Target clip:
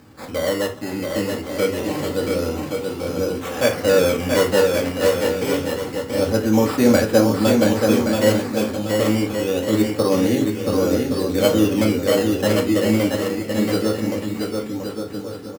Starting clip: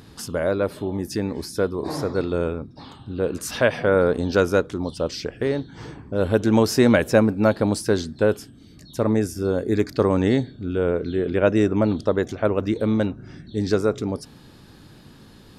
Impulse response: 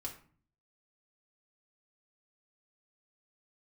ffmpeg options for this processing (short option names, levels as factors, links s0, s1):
-filter_complex "[0:a]acrusher=samples=13:mix=1:aa=0.000001:lfo=1:lforange=13:lforate=0.26,highpass=f=170:p=1,aecho=1:1:680|1122|1409|1596|1717:0.631|0.398|0.251|0.158|0.1[s0];[1:a]atrim=start_sample=2205,atrim=end_sample=3969[s1];[s0][s1]afir=irnorm=-1:irlink=0,volume=1.26"